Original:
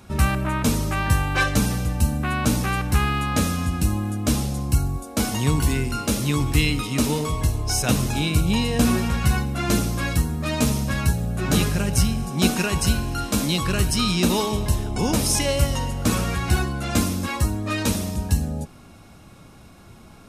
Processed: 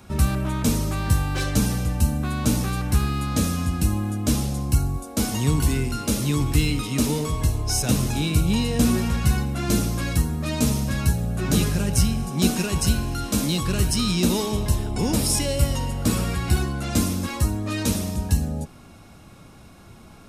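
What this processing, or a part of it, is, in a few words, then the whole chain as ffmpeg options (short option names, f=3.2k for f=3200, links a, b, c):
one-band saturation: -filter_complex "[0:a]acrossover=split=510|3700[a][b][c];[b]asoftclip=type=tanh:threshold=-32dB[d];[a][d][c]amix=inputs=3:normalize=0,asettb=1/sr,asplit=3[e][f][g];[e]atrim=end=14.774[h];[f]atrim=start=14.77:end=16.59,asetpts=PTS-STARTPTS,afade=t=in:d=0.004:c=qsin,afade=t=out:st=1.816:d=0.004:c=qsin,bandreject=f=6.2k:w=9.7[i];[g]atrim=start=16.586[j];[h][i]acrossfade=d=0.004:c1=hsin:c2=qsin[k];[k][j]acrossfade=d=0.004:c1=qsin:c2=hsin"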